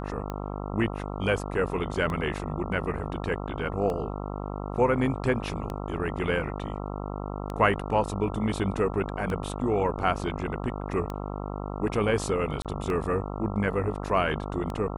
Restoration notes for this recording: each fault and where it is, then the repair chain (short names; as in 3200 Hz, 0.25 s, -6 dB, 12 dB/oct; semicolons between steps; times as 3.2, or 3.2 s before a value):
buzz 50 Hz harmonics 27 -34 dBFS
tick 33 1/3 rpm -20 dBFS
12.62–12.65 gap 27 ms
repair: de-click; de-hum 50 Hz, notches 27; interpolate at 12.62, 27 ms